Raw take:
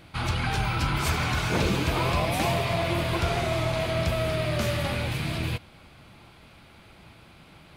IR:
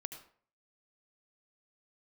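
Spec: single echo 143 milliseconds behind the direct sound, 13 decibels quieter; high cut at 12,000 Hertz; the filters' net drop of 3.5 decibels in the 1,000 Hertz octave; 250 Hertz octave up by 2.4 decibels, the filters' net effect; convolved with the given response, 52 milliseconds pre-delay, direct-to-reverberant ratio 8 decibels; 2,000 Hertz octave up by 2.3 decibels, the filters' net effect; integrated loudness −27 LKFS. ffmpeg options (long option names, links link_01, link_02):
-filter_complex "[0:a]lowpass=12000,equalizer=frequency=250:width_type=o:gain=4,equalizer=frequency=1000:width_type=o:gain=-6.5,equalizer=frequency=2000:width_type=o:gain=4.5,aecho=1:1:143:0.224,asplit=2[link_01][link_02];[1:a]atrim=start_sample=2205,adelay=52[link_03];[link_02][link_03]afir=irnorm=-1:irlink=0,volume=-5.5dB[link_04];[link_01][link_04]amix=inputs=2:normalize=0,volume=-2dB"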